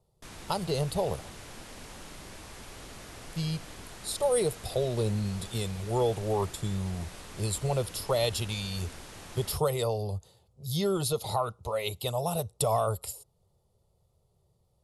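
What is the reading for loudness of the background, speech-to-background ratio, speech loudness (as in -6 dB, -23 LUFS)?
-45.5 LUFS, 14.5 dB, -31.0 LUFS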